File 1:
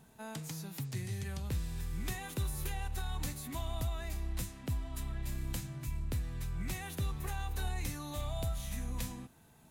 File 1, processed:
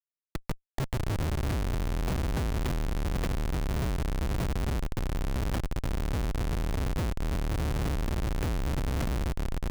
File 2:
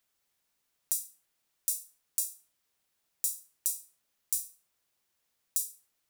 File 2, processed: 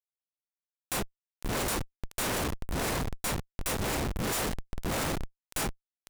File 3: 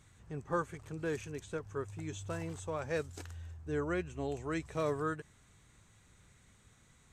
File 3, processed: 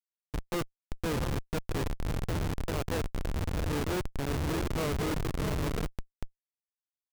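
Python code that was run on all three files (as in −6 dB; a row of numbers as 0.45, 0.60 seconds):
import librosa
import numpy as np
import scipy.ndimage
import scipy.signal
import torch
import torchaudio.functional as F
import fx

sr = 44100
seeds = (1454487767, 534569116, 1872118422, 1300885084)

y = fx.dmg_buzz(x, sr, base_hz=50.0, harmonics=4, level_db=-68.0, tilt_db=-8, odd_only=False)
y = fx.echo_diffused(y, sr, ms=689, feedback_pct=47, wet_db=-3)
y = fx.schmitt(y, sr, flips_db=-33.0)
y = F.gain(torch.from_numpy(y), 7.5).numpy()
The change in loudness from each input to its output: +7.5, +0.5, +5.0 LU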